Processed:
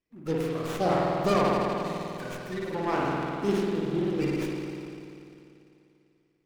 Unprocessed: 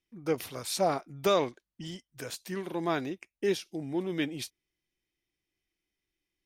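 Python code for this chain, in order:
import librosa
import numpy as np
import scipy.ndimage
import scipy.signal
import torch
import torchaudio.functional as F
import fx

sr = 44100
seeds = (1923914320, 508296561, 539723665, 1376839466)

y = fx.spec_quant(x, sr, step_db=30)
y = fx.rev_spring(y, sr, rt60_s=2.8, pass_ms=(49,), chirp_ms=50, drr_db=-4.5)
y = fx.running_max(y, sr, window=9)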